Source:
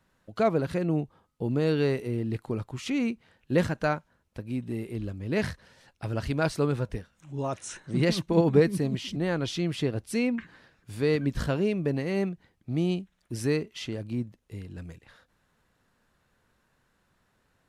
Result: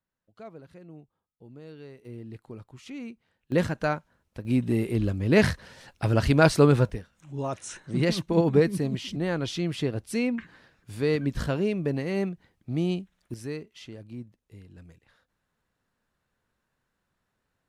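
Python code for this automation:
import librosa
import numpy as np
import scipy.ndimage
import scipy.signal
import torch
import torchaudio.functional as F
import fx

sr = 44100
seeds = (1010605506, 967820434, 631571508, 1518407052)

y = fx.gain(x, sr, db=fx.steps((0.0, -20.0), (2.05, -11.0), (3.52, 0.0), (4.45, 8.0), (6.9, 0.0), (13.34, -8.5)))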